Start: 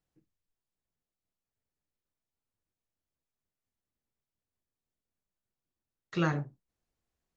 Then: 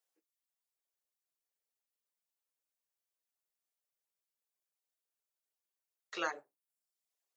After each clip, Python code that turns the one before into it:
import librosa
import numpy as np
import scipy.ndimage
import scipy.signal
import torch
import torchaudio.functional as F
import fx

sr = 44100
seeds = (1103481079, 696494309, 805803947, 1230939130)

y = fx.dereverb_blind(x, sr, rt60_s=0.77)
y = scipy.signal.sosfilt(scipy.signal.butter(4, 440.0, 'highpass', fs=sr, output='sos'), y)
y = fx.high_shelf(y, sr, hz=5000.0, db=9.5)
y = y * librosa.db_to_amplitude(-3.0)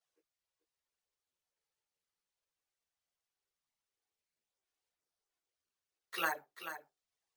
y = fx.chorus_voices(x, sr, voices=4, hz=0.77, base_ms=12, depth_ms=1.4, mix_pct=70)
y = y + 10.0 ** (-10.0 / 20.0) * np.pad(y, (int(436 * sr / 1000.0), 0))[:len(y)]
y = np.repeat(scipy.signal.resample_poly(y, 1, 3), 3)[:len(y)]
y = y * librosa.db_to_amplitude(5.0)